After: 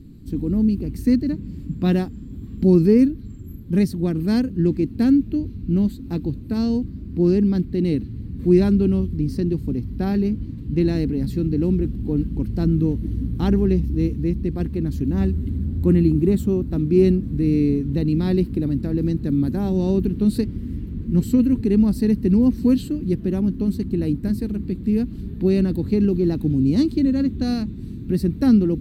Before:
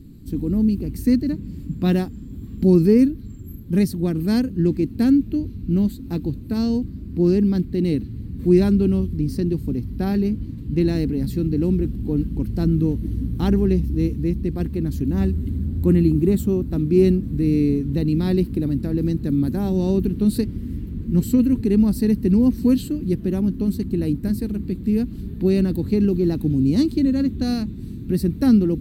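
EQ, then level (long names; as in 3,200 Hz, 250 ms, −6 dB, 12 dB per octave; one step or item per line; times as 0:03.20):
high-shelf EQ 8,400 Hz −8.5 dB
0.0 dB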